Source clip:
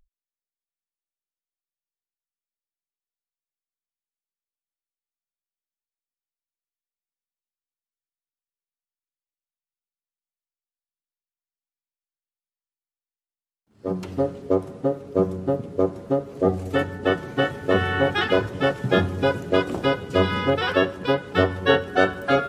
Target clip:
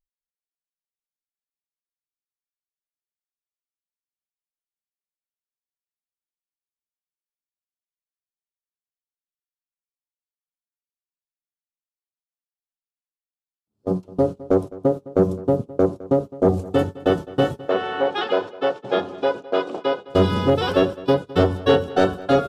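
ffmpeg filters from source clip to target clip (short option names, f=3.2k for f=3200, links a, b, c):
-filter_complex "[0:a]agate=range=-25dB:threshold=-27dB:ratio=16:detection=peak,equalizer=f=1.9k:w=1.3:g=-14,asoftclip=type=tanh:threshold=-11.5dB,asettb=1/sr,asplit=3[a][b][c];[a]atrim=end=17.664[d];[b]atrim=start=17.66:end=20.08,asetpts=PTS-STARTPTS,afade=t=in:d=0.004:c=qsin,afade=t=out:st=2.416:d=0.004:c=qsin,highpass=470,lowpass=3.7k[e];[c]atrim=start=20.076[f];[d][e]acrossfade=d=0.004:c1=hsin:c2=qsin[g];[g][f]acrossfade=d=0.004:c1=qsin:c2=hsin,asplit=2[h][i];[i]adelay=209.9,volume=-19dB,highshelf=f=4k:g=-4.72[j];[h][j]amix=inputs=2:normalize=0,volume=5.5dB"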